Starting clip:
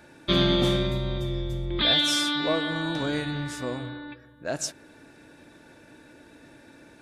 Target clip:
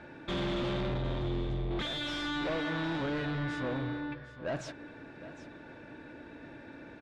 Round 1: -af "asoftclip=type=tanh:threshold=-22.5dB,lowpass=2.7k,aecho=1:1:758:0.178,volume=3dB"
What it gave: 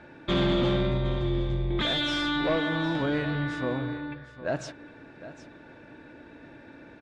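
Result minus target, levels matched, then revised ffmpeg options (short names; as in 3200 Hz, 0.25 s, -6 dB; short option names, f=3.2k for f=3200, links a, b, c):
soft clip: distortion -7 dB
-af "asoftclip=type=tanh:threshold=-33.5dB,lowpass=2.7k,aecho=1:1:758:0.178,volume=3dB"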